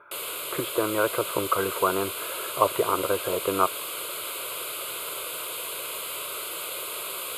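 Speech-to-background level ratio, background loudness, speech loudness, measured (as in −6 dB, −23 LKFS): 4.5 dB, −31.5 LKFS, −27.0 LKFS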